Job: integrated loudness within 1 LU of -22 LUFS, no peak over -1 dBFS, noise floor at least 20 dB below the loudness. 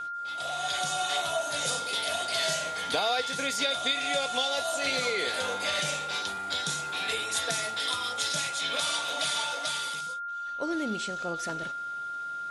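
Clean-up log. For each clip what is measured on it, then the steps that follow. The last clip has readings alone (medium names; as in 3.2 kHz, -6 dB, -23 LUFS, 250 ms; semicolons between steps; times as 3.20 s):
steady tone 1.4 kHz; tone level -33 dBFS; loudness -29.0 LUFS; peak level -15.0 dBFS; loudness target -22.0 LUFS
-> band-stop 1.4 kHz, Q 30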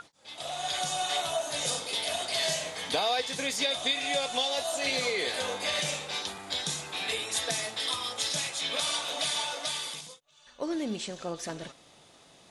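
steady tone not found; loudness -30.0 LUFS; peak level -14.5 dBFS; loudness target -22.0 LUFS
-> trim +8 dB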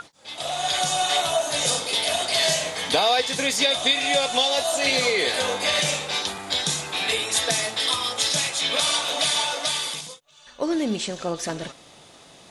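loudness -22.0 LUFS; peak level -6.5 dBFS; noise floor -50 dBFS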